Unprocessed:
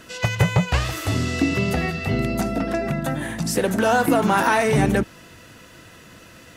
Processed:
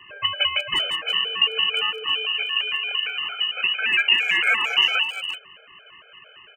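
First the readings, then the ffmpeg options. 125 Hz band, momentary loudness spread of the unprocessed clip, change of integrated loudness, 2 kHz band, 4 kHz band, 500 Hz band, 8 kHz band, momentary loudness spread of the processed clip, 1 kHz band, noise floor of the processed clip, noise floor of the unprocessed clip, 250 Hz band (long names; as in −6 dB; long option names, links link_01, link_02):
below −30 dB, 7 LU, +1.0 dB, +4.5 dB, +15.0 dB, −15.5 dB, below −10 dB, 7 LU, −8.5 dB, −50 dBFS, −46 dBFS, below −25 dB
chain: -filter_complex "[0:a]lowpass=frequency=2600:width_type=q:width=0.5098,lowpass=frequency=2600:width_type=q:width=0.6013,lowpass=frequency=2600:width_type=q:width=0.9,lowpass=frequency=2600:width_type=q:width=2.563,afreqshift=-3100,asplit=2[link_01][link_02];[link_02]adelay=350,highpass=300,lowpass=3400,asoftclip=type=hard:threshold=-14.5dB,volume=-8dB[link_03];[link_01][link_03]amix=inputs=2:normalize=0,afftfilt=real='re*gt(sin(2*PI*4.4*pts/sr)*(1-2*mod(floor(b*sr/1024/430),2)),0)':imag='im*gt(sin(2*PI*4.4*pts/sr)*(1-2*mod(floor(b*sr/1024/430),2)),0)':win_size=1024:overlap=0.75,volume=1.5dB"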